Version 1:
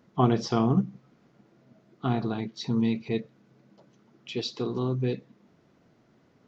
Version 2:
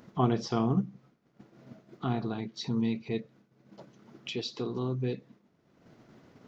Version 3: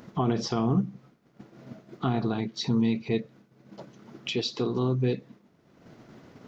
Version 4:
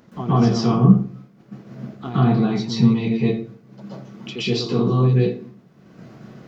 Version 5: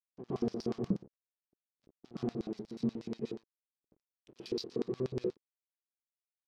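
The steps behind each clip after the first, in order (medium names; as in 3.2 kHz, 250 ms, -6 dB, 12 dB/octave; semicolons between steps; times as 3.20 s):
expander -49 dBFS; upward compressor, threshold -28 dBFS; trim -4 dB
peak limiter -21.5 dBFS, peak gain reduction 10 dB; trim +6 dB
reverberation RT60 0.45 s, pre-delay 116 ms, DRR -10 dB; trim -4 dB
hysteresis with a dead band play -21 dBFS; LFO band-pass square 8.3 Hz 380–5100 Hz; trim -7.5 dB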